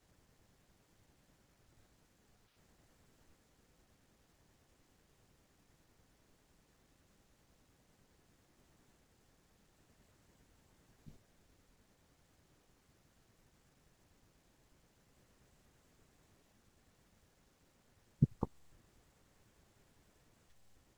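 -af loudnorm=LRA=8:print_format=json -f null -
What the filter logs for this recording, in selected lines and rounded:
"input_i" : "-37.8",
"input_tp" : "-15.8",
"input_lra" : "0.0",
"input_thresh" : "-54.5",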